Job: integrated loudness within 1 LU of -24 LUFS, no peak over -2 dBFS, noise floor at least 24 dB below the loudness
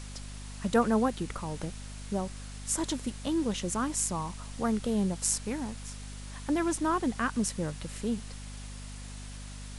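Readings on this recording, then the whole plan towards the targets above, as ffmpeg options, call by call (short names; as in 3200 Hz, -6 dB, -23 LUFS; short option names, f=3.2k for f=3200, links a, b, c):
hum 50 Hz; harmonics up to 250 Hz; hum level -40 dBFS; noise floor -43 dBFS; noise floor target -56 dBFS; loudness -31.5 LUFS; peak -10.5 dBFS; loudness target -24.0 LUFS
-> -af "bandreject=f=50:t=h:w=4,bandreject=f=100:t=h:w=4,bandreject=f=150:t=h:w=4,bandreject=f=200:t=h:w=4,bandreject=f=250:t=h:w=4"
-af "afftdn=nr=13:nf=-43"
-af "volume=7.5dB"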